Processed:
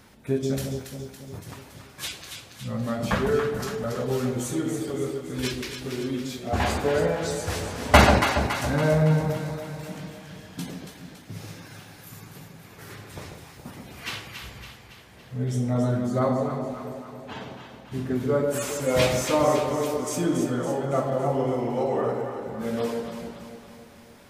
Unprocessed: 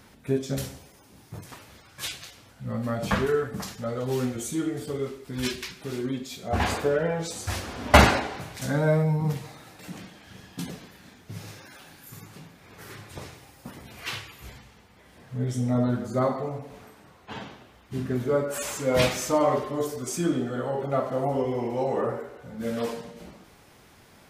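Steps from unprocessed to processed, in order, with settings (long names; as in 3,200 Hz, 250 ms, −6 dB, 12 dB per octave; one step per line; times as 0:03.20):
delay that swaps between a low-pass and a high-pass 140 ms, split 820 Hz, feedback 74%, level −4 dB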